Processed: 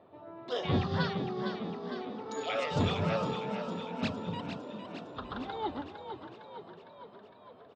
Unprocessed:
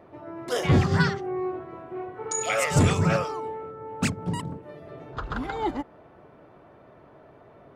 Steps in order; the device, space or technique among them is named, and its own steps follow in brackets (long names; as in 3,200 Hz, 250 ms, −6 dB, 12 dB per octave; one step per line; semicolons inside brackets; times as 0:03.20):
frequency-shifting delay pedal into a guitar cabinet (echo with shifted repeats 457 ms, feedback 62%, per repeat +40 Hz, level −8 dB; loudspeaker in its box 100–4,400 Hz, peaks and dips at 140 Hz −7 dB, 330 Hz −5 dB, 1,500 Hz −5 dB, 2,100 Hz −7 dB, 3,700 Hz +7 dB)
level −6 dB